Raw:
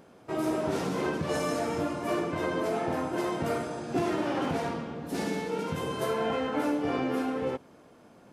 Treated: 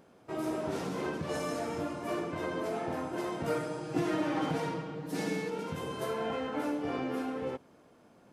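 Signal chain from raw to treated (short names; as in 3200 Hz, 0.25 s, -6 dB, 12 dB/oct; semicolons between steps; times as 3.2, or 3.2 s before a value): 3.47–5.5 comb 6.4 ms, depth 91%; gain -5 dB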